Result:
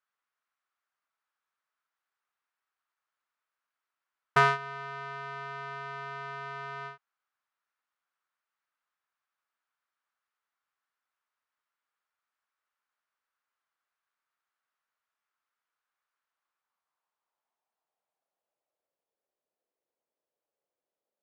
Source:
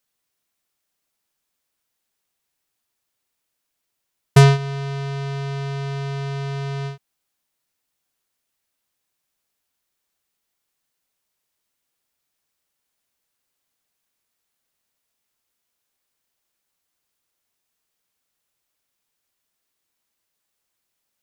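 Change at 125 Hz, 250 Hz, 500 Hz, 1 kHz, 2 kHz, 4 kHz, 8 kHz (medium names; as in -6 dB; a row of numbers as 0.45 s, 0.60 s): -24.0 dB, under -20 dB, -12.0 dB, -1.5 dB, -1.5 dB, -12.0 dB, -18.0 dB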